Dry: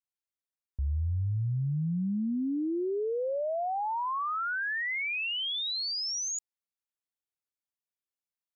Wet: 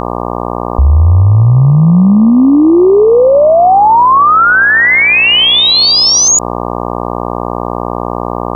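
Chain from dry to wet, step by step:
0:04.19–0:06.28: echo with shifted repeats 256 ms, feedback 38%, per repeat +84 Hz, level −13 dB
hum with harmonics 60 Hz, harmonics 20, −50 dBFS 0 dB per octave
boost into a limiter +34 dB
level −1 dB

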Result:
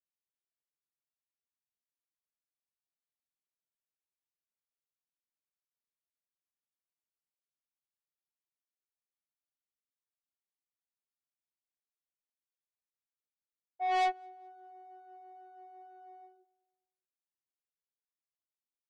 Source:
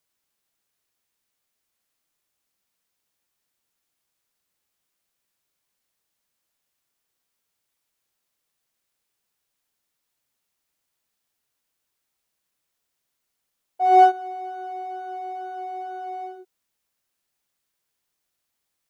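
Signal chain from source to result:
high-shelf EQ 3,500 Hz −9 dB
soft clipping −22 dBFS, distortion −4 dB
on a send: repeating echo 208 ms, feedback 40%, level −21 dB
on the sum: expander for the loud parts 2.5 to 1, over −36 dBFS
level −4 dB

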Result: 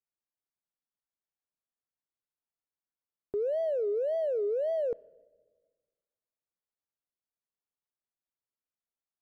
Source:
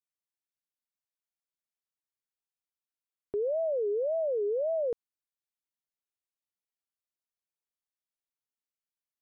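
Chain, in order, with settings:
adaptive Wiener filter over 15 samples
on a send: convolution reverb RT60 1.4 s, pre-delay 22 ms, DRR 23 dB

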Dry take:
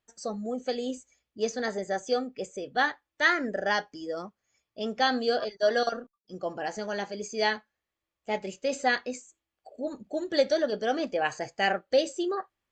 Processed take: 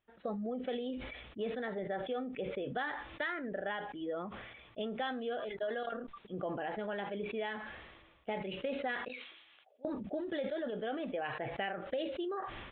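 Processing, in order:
0:09.08–0:09.85: first difference
downward compressor 10 to 1, threshold −35 dBFS, peak gain reduction 17.5 dB
downsampling to 8,000 Hz
level that may fall only so fast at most 41 dB per second

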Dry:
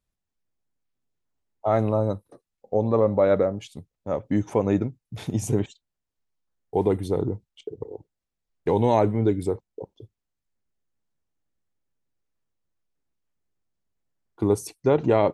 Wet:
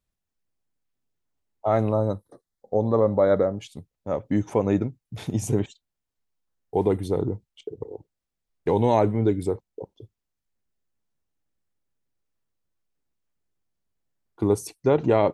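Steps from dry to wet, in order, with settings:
0:01.93–0:03.53: Butterworth band-reject 2,600 Hz, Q 2.4

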